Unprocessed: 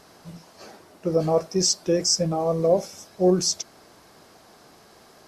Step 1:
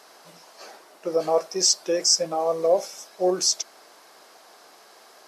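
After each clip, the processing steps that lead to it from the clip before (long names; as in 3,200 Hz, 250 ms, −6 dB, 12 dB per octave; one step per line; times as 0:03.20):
high-pass filter 510 Hz 12 dB per octave
level +2.5 dB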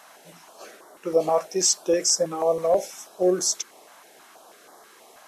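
parametric band 4,800 Hz −10.5 dB 0.49 octaves
notch on a step sequencer 6.2 Hz 390–2,600 Hz
level +3.5 dB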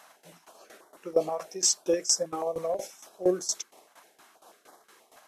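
in parallel at −3 dB: output level in coarse steps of 10 dB
on the sum: shaped tremolo saw down 4.3 Hz, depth 85%
level −5.5 dB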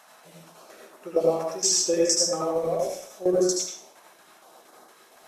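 convolution reverb RT60 0.55 s, pre-delay 71 ms, DRR −2.5 dB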